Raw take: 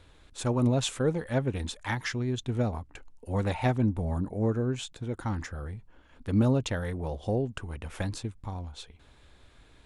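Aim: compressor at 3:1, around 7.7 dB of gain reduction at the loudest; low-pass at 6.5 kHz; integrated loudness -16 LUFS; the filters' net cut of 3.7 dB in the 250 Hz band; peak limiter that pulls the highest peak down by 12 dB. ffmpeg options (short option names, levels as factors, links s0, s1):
-af "lowpass=6500,equalizer=f=250:t=o:g=-4.5,acompressor=threshold=0.0251:ratio=3,volume=17.8,alimiter=limit=0.473:level=0:latency=1"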